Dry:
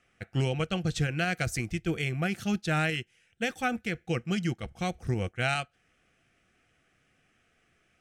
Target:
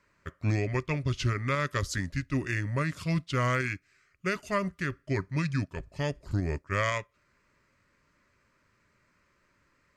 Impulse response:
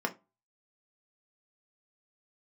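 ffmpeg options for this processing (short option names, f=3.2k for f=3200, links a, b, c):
-af "asetrate=35412,aresample=44100"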